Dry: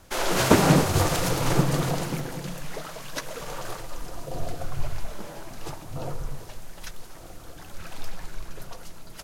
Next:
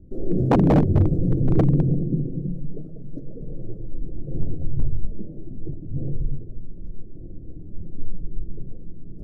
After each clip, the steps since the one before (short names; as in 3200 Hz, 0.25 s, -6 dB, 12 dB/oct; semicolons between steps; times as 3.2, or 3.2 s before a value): inverse Chebyshev low-pass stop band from 920 Hz, stop band 50 dB; reverse; upward compressor, threshold -38 dBFS; reverse; wavefolder -17.5 dBFS; gain +8 dB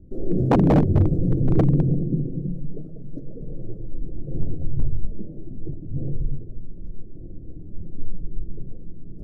nothing audible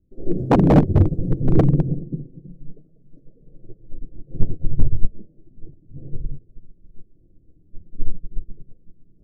upward expander 2.5:1, over -29 dBFS; gain +8.5 dB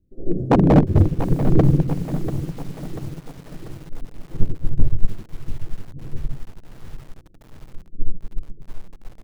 lo-fi delay 0.69 s, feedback 55%, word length 6-bit, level -11 dB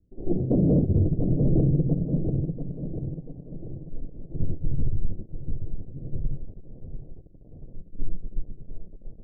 minimum comb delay 0.54 ms; steep low-pass 600 Hz 36 dB/oct; limiter -14 dBFS, peak gain reduction 10 dB